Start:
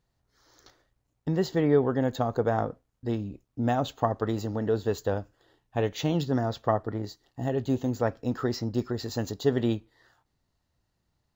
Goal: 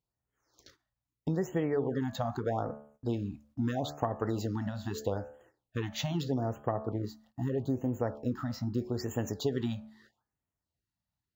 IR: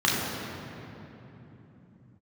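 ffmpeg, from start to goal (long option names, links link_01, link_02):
-filter_complex "[0:a]highpass=48,bandreject=frequency=72.89:width_type=h:width=4,bandreject=frequency=145.78:width_type=h:width=4,bandreject=frequency=218.67:width_type=h:width=4,bandreject=frequency=291.56:width_type=h:width=4,bandreject=frequency=364.45:width_type=h:width=4,bandreject=frequency=437.34:width_type=h:width=4,bandreject=frequency=510.23:width_type=h:width=4,bandreject=frequency=583.12:width_type=h:width=4,bandreject=frequency=656.01:width_type=h:width=4,bandreject=frequency=728.9:width_type=h:width=4,bandreject=frequency=801.79:width_type=h:width=4,bandreject=frequency=874.68:width_type=h:width=4,bandreject=frequency=947.57:width_type=h:width=4,bandreject=frequency=1020.46:width_type=h:width=4,bandreject=frequency=1093.35:width_type=h:width=4,bandreject=frequency=1166.24:width_type=h:width=4,bandreject=frequency=1239.13:width_type=h:width=4,bandreject=frequency=1312.02:width_type=h:width=4,bandreject=frequency=1384.91:width_type=h:width=4,bandreject=frequency=1457.8:width_type=h:width=4,bandreject=frequency=1530.69:width_type=h:width=4,bandreject=frequency=1603.58:width_type=h:width=4,bandreject=frequency=1676.47:width_type=h:width=4,bandreject=frequency=1749.36:width_type=h:width=4,agate=range=-13dB:threshold=-59dB:ratio=16:detection=peak,asettb=1/sr,asplit=3[link_01][link_02][link_03];[link_01]atrim=end=6.344[link_04];[link_02]atrim=start=6.34:end=8.92,asetpts=PTS-STARTPTS,afade=type=in:duration=0.004:curve=qsin,afade=type=out:start_time=2.576:duration=0.004:curve=qsin,equalizer=frequency=4500:width=0.32:gain=-7.5[link_05];[link_03]atrim=start=8.916[link_06];[link_04][link_05]acrossfade=duration=0.004:curve1=hsin:curve2=qsin[link_07];[link_07][link_06]acrossfade=duration=0.004:curve1=qsin:curve2=hsin,acompressor=threshold=-27dB:ratio=5,afftfilt=real='re*(1-between(b*sr/1024,360*pow(4800/360,0.5+0.5*sin(2*PI*0.79*pts/sr))/1.41,360*pow(4800/360,0.5+0.5*sin(2*PI*0.79*pts/sr))*1.41))':imag='im*(1-between(b*sr/1024,360*pow(4800/360,0.5+0.5*sin(2*PI*0.79*pts/sr))/1.41,360*pow(4800/360,0.5+0.5*sin(2*PI*0.79*pts/sr))*1.41))':win_size=1024:overlap=0.75"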